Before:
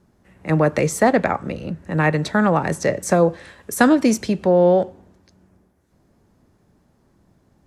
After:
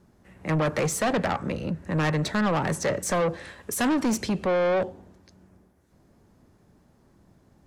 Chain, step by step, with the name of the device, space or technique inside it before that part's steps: saturation between pre-emphasis and de-emphasis (treble shelf 9 kHz +6.5 dB; saturation -20.5 dBFS, distortion -6 dB; treble shelf 9 kHz -6.5 dB)

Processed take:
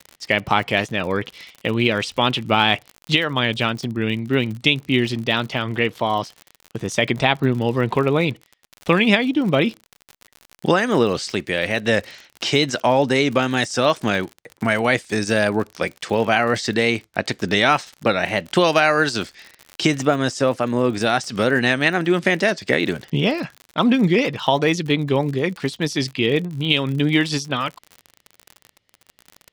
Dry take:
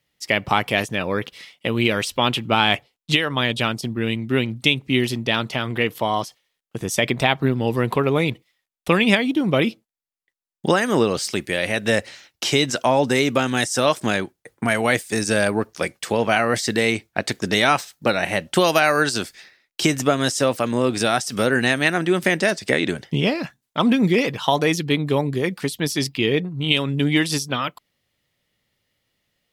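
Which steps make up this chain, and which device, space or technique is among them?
lo-fi chain (low-pass 5.8 kHz 12 dB/octave; wow and flutter; crackle 57 per s -29 dBFS); 20.01–21.06 s: dynamic bell 3.6 kHz, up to -5 dB, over -41 dBFS, Q 0.93; trim +1 dB

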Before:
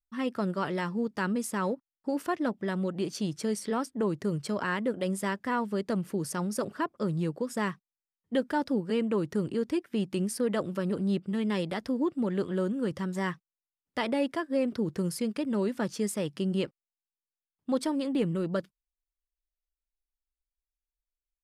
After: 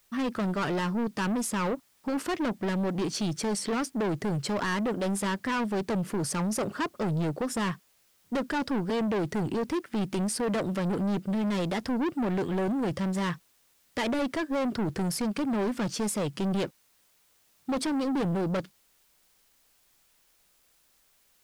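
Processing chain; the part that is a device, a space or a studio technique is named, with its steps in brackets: compact cassette (saturation -34 dBFS, distortion -7 dB; low-pass 11 kHz; wow and flutter; white noise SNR 36 dB); trim +8.5 dB

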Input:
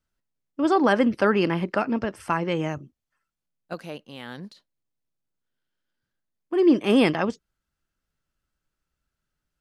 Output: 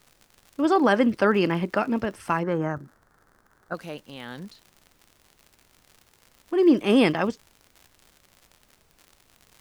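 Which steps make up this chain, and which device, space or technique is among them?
vinyl LP (crackle 96 per s -38 dBFS; pink noise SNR 37 dB); 2.43–3.75 s: resonant high shelf 2 kHz -9 dB, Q 3

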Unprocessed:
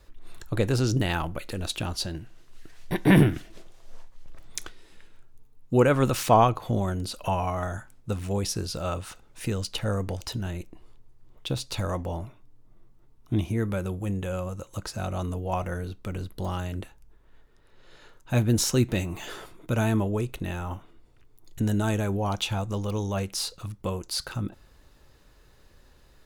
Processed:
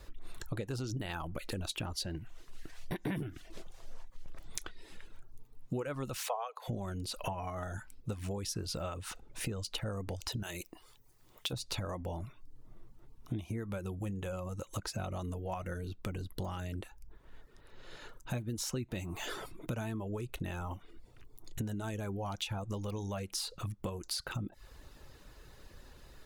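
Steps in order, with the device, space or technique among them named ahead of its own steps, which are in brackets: 6.18–6.68 s: steep high-pass 440 Hz 96 dB/octave; 10.43–11.53 s: tilt EQ +3 dB/octave; serial compression, peaks first (compression 5:1, threshold -33 dBFS, peak gain reduction 17.5 dB; compression 1.5:1, threshold -45 dBFS, peak gain reduction 6 dB); reverb removal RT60 0.5 s; trim +3.5 dB

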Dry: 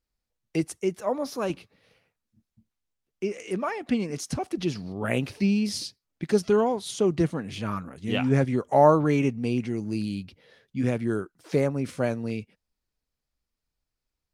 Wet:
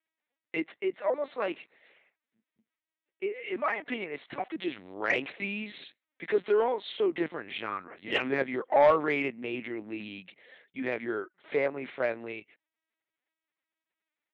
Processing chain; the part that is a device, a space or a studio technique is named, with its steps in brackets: talking toy (LPC vocoder at 8 kHz pitch kept; high-pass 410 Hz 12 dB/octave; peaking EQ 2 kHz +8.5 dB 0.59 oct; saturation -13.5 dBFS, distortion -15 dB)

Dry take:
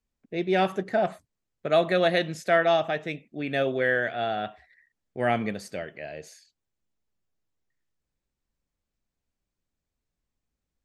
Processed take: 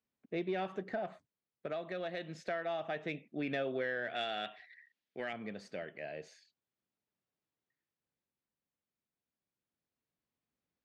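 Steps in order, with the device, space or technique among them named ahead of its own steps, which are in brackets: 4.15–5.33 s: frequency weighting D; AM radio (band-pass 140–4200 Hz; compression 8:1, threshold -29 dBFS, peak gain reduction 12.5 dB; saturation -20.5 dBFS, distortion -25 dB; tremolo 0.28 Hz, depth 40%); trim -2.5 dB

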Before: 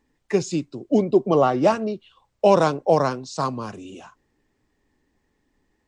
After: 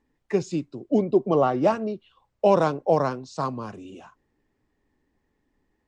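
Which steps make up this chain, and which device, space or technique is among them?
behind a face mask (treble shelf 3.4 kHz -8 dB); trim -2.5 dB

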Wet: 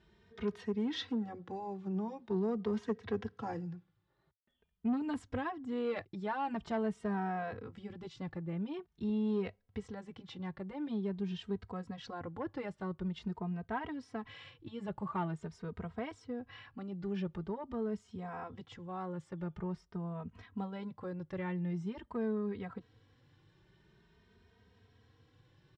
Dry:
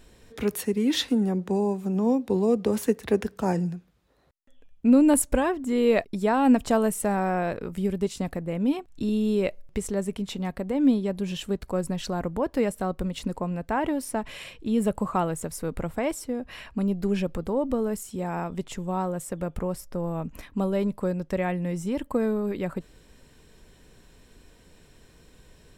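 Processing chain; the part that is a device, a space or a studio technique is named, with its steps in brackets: barber-pole flanger into a guitar amplifier (endless flanger 2.9 ms +0.46 Hz; saturation -18 dBFS, distortion -17 dB; cabinet simulation 82–4500 Hz, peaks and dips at 100 Hz +10 dB, 270 Hz -6 dB, 570 Hz -10 dB, 2.5 kHz -6 dB, 4.2 kHz -4 dB); trim -5.5 dB

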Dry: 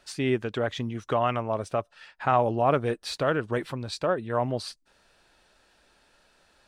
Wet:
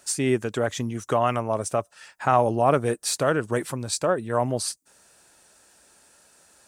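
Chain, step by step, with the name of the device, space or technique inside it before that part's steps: budget condenser microphone (high-pass 74 Hz; resonant high shelf 5.4 kHz +12 dB, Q 1.5); trim +3 dB

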